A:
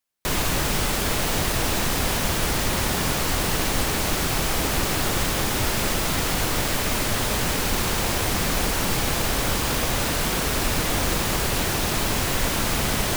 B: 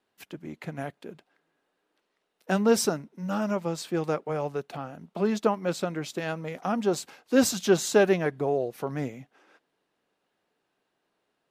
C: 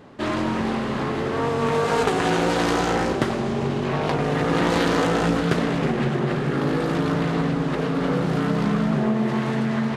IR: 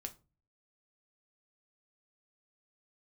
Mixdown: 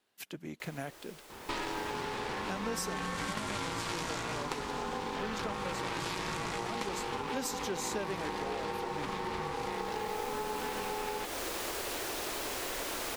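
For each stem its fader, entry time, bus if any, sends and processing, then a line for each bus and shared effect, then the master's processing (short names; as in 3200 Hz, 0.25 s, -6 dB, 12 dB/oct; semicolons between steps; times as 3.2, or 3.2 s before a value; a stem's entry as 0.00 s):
-8.0 dB, 0.35 s, no send, resonant low shelf 250 Hz -12.5 dB, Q 1.5; auto duck -21 dB, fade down 0.60 s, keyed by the second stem
-3.5 dB, 0.00 s, no send, high shelf 2300 Hz +9 dB
-1.0 dB, 1.30 s, no send, high shelf 2300 Hz +11.5 dB; ring modulator 640 Hz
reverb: off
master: compressor 5:1, threshold -34 dBFS, peak gain reduction 16 dB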